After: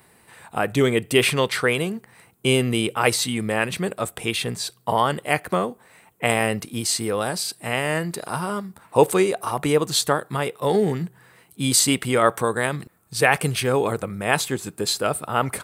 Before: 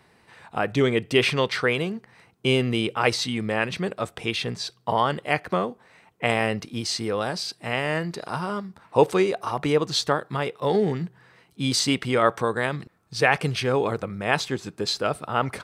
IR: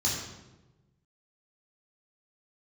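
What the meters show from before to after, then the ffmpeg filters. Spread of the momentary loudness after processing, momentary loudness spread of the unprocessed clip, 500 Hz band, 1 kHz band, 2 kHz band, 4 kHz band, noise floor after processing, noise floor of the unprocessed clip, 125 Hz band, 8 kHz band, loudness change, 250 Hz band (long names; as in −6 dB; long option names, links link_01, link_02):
9 LU, 9 LU, +2.0 dB, +2.0 dB, +2.0 dB, +2.0 dB, −57 dBFS, −60 dBFS, +2.0 dB, +9.5 dB, +2.5 dB, +2.0 dB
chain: -af "aexciter=amount=6.8:drive=2.4:freq=7600,volume=2dB"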